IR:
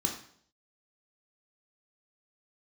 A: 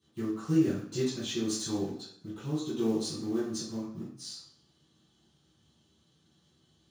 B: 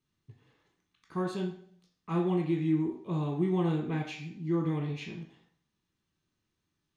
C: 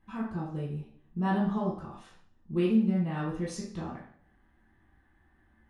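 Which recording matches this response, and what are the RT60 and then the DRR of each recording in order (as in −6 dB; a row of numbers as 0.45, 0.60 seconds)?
B; 0.60, 0.60, 0.60 seconds; −13.5, 0.5, −6.0 decibels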